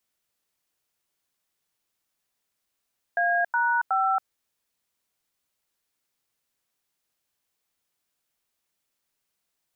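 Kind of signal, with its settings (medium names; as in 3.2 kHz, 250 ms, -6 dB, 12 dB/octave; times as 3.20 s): DTMF "A#5", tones 277 ms, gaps 91 ms, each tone -23 dBFS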